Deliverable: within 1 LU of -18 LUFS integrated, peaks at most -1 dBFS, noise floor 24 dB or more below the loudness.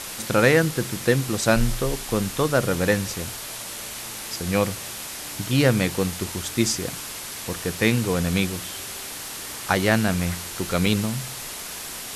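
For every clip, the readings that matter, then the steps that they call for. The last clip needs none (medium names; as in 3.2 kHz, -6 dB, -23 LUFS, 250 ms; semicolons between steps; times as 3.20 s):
dropouts 1; longest dropout 2.8 ms; noise floor -35 dBFS; noise floor target -48 dBFS; loudness -24.0 LUFS; peak level -4.5 dBFS; loudness target -18.0 LUFS
-> interpolate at 10.86 s, 2.8 ms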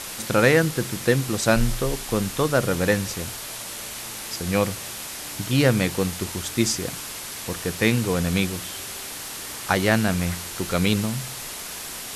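dropouts 0; noise floor -35 dBFS; noise floor target -48 dBFS
-> noise reduction 13 dB, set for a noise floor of -35 dBFS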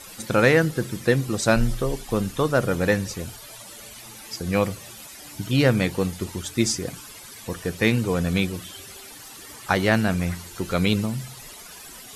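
noise floor -43 dBFS; noise floor target -48 dBFS
-> noise reduction 6 dB, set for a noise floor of -43 dBFS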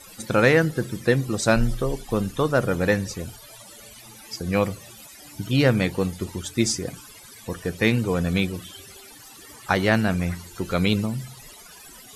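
noise floor -46 dBFS; noise floor target -48 dBFS
-> noise reduction 6 dB, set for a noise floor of -46 dBFS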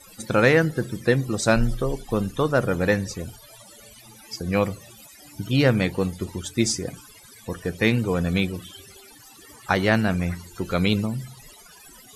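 noise floor -49 dBFS; loudness -23.5 LUFS; peak level -5.0 dBFS; loudness target -18.0 LUFS
-> trim +5.5 dB; peak limiter -1 dBFS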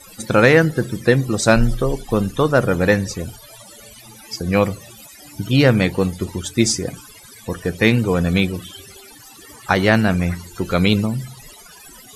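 loudness -18.0 LUFS; peak level -1.0 dBFS; noise floor -43 dBFS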